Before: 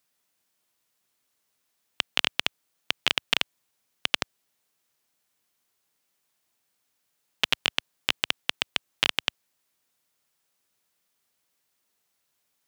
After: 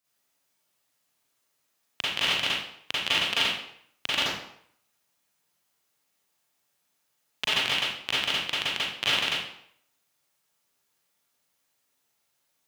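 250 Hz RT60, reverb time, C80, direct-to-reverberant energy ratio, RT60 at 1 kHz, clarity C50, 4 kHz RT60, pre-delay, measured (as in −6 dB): 0.60 s, 0.65 s, 3.0 dB, −9.5 dB, 0.70 s, −3.0 dB, 0.55 s, 36 ms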